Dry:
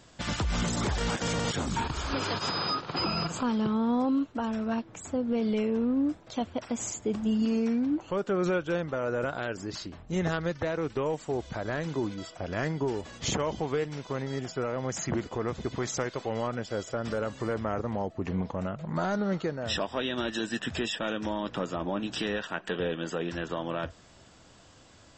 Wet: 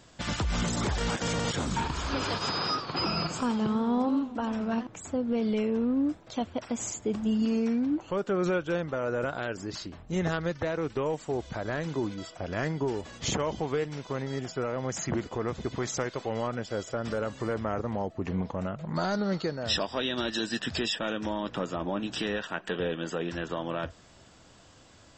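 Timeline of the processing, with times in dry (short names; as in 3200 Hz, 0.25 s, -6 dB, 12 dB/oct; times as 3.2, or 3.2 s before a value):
1.44–4.87 warbling echo 88 ms, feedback 58%, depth 170 cents, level -12 dB
18.94–20.94 bell 4600 Hz +13 dB 0.38 oct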